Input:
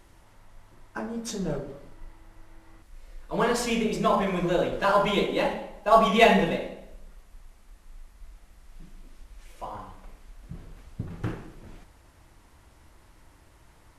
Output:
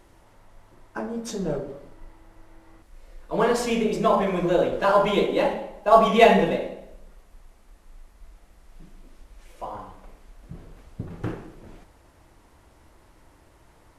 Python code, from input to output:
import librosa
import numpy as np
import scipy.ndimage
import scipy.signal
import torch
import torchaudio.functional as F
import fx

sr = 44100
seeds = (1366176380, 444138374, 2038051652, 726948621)

y = fx.peak_eq(x, sr, hz=480.0, db=5.5, octaves=2.2)
y = y * librosa.db_to_amplitude(-1.0)